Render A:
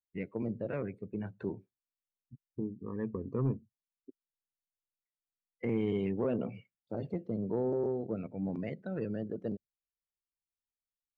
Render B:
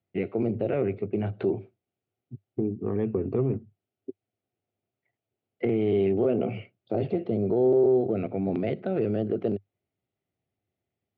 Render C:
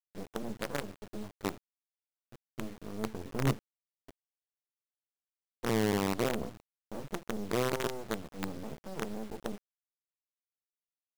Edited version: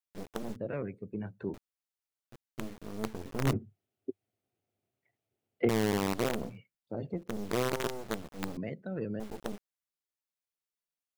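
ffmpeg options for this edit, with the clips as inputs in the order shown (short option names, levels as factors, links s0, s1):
-filter_complex "[0:a]asplit=3[s0][s1][s2];[2:a]asplit=5[s3][s4][s5][s6][s7];[s3]atrim=end=0.562[s8];[s0]atrim=start=0.558:end=1.542[s9];[s4]atrim=start=1.538:end=3.532[s10];[1:a]atrim=start=3.528:end=5.692[s11];[s5]atrim=start=5.688:end=6.61[s12];[s1]atrim=start=6.37:end=7.39[s13];[s6]atrim=start=7.15:end=8.572[s14];[s2]atrim=start=8.568:end=9.202[s15];[s7]atrim=start=9.198[s16];[s8][s9]acrossfade=d=0.004:c1=hsin:c2=hsin[s17];[s17][s10]acrossfade=d=0.004:c1=hsin:c2=hsin[s18];[s18][s11]acrossfade=d=0.004:c1=hsin:c2=hsin[s19];[s19][s12]acrossfade=d=0.004:c1=hsin:c2=hsin[s20];[s20][s13]acrossfade=d=0.24:c1=tri:c2=tri[s21];[s21][s14]acrossfade=d=0.24:c1=tri:c2=tri[s22];[s22][s15]acrossfade=d=0.004:c1=hsin:c2=hsin[s23];[s23][s16]acrossfade=d=0.004:c1=hsin:c2=hsin"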